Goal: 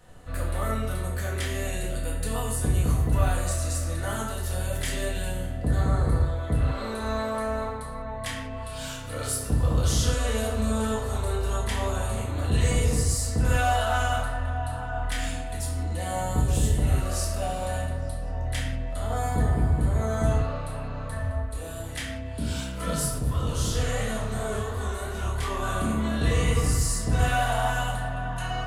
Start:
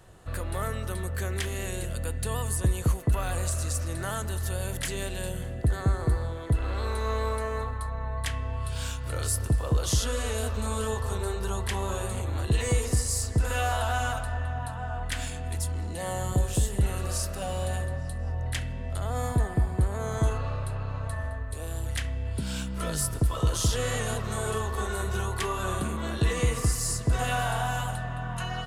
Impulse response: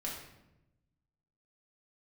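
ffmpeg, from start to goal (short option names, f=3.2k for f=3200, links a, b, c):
-filter_complex "[1:a]atrim=start_sample=2205,afade=t=out:st=0.25:d=0.01,atrim=end_sample=11466[a];[0:a][a]afir=irnorm=-1:irlink=0,asplit=3[b][c][d];[b]afade=t=out:st=23.18:d=0.02[e];[c]flanger=delay=22.5:depth=7.4:speed=2.9,afade=t=in:st=23.18:d=0.02,afade=t=out:st=25.62:d=0.02[f];[d]afade=t=in:st=25.62:d=0.02[g];[e][f][g]amix=inputs=3:normalize=0,volume=1dB"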